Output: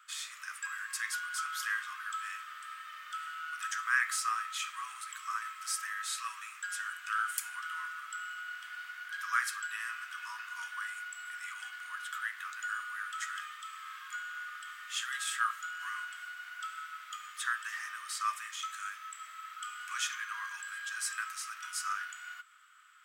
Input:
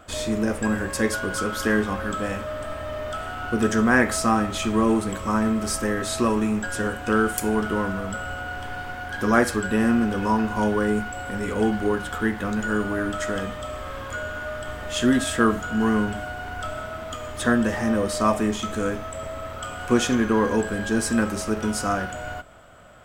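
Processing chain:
Chebyshev high-pass filter 1,200 Hz, order 5
level −6.5 dB

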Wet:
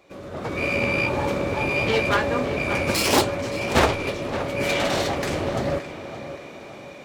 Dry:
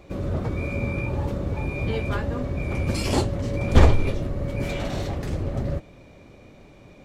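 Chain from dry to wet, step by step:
phase distortion by the signal itself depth 0.47 ms
high-pass filter 650 Hz 6 dB per octave
automatic gain control gain up to 14 dB
tape delay 572 ms, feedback 51%, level −10.5 dB, low-pass 3,400 Hz
level −2 dB

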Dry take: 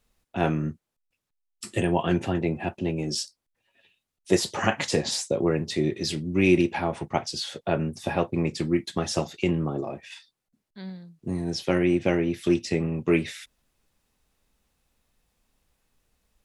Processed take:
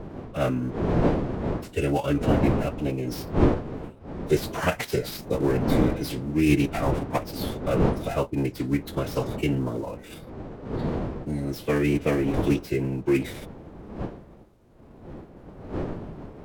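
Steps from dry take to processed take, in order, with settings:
gap after every zero crossing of 0.067 ms
wind on the microphone 370 Hz −29 dBFS
phase-vocoder pitch shift with formants kept −3.5 semitones

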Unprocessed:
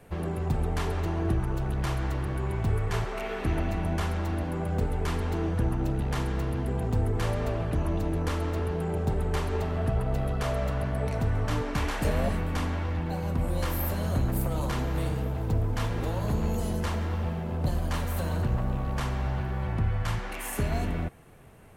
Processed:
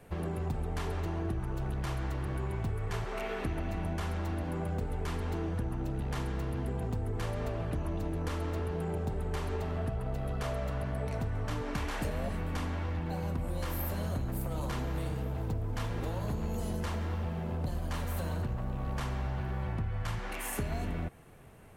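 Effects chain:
downward compressor, threshold −28 dBFS, peak gain reduction 7.5 dB
level −2 dB

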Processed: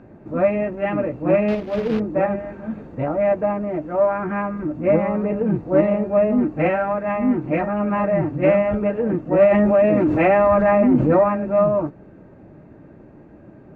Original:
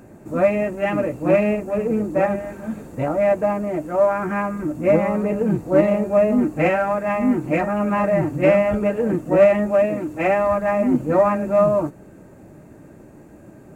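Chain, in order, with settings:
0:01.48–0:02.00: log-companded quantiser 4 bits
high-frequency loss of the air 280 metres
0:09.51–0:11.24: envelope flattener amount 70%

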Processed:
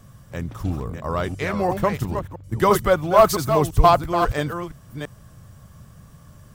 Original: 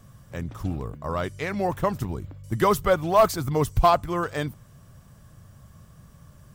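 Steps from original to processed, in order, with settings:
delay that plays each chunk backwards 337 ms, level −6 dB
0:02.19–0:04.22: multiband upward and downward expander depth 40%
level +3 dB

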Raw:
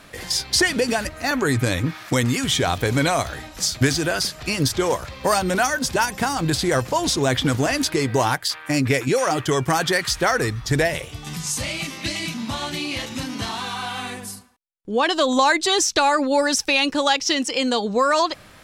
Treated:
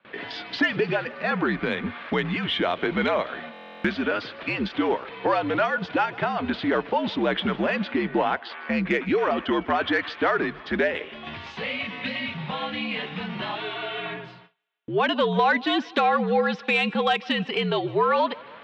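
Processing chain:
0:13.55–0:14.06: graphic EQ with 10 bands 250 Hz −6 dB, 500 Hz +11 dB, 1,000 Hz −12 dB, 2,000 Hz +3 dB
single-sideband voice off tune −73 Hz 260–3,400 Hz
in parallel at −2 dB: downward compressor 6 to 1, threshold −33 dBFS, peak gain reduction 18 dB
on the sum: soft clipping −6 dBFS, distortion −28 dB
0:07.83–0:08.67: high-frequency loss of the air 81 metres
on a send: feedback echo with a high-pass in the loop 156 ms, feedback 70%, high-pass 330 Hz, level −22 dB
on the sum: noise gate with hold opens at −34 dBFS
buffer that repeats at 0:03.52, samples 1,024, times 13
level −3 dB

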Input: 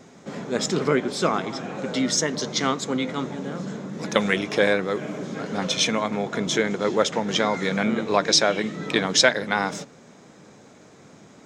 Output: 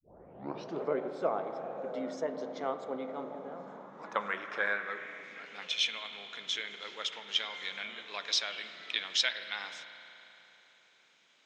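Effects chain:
turntable start at the beginning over 0.81 s
spring reverb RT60 3.4 s, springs 34 ms, chirp 25 ms, DRR 8.5 dB
band-pass filter sweep 640 Hz → 3,100 Hz, 0:03.34–0:05.91
level −3.5 dB

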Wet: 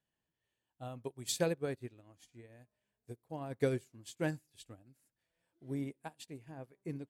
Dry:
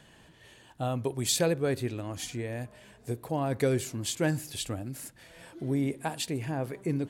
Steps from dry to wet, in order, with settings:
expander for the loud parts 2.5 to 1, over −42 dBFS
level −3.5 dB

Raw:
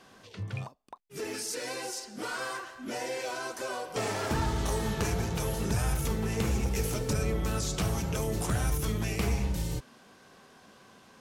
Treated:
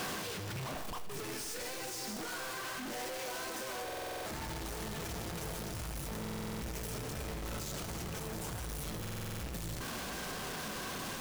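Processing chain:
sign of each sample alone
tuned comb filter 160 Hz, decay 1.6 s, mix 60%
echo with a time of its own for lows and highs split 400 Hz, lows 696 ms, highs 161 ms, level −10.5 dB
on a send at −12 dB: convolution reverb RT60 0.80 s, pre-delay 6 ms
on the sum: brickwall limiter −35.5 dBFS, peak gain reduction 7.5 dB
buffer that repeats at 0:03.84/0:06.20/0:09.00, samples 2,048, times 8
level +1.5 dB

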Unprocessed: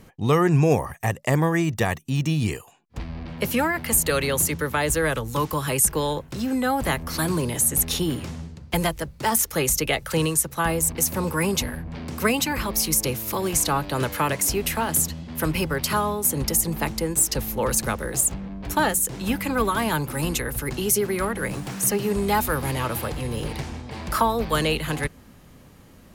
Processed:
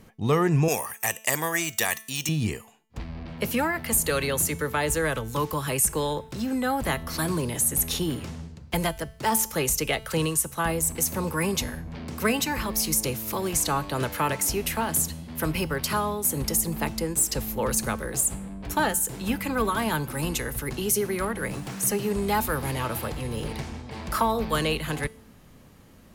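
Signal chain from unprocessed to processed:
0:00.68–0:02.29: spectral tilt +4.5 dB per octave
tuned comb filter 220 Hz, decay 0.57 s, harmonics all, mix 50%
in parallel at −8.5 dB: hard clipping −20 dBFS, distortion −20 dB

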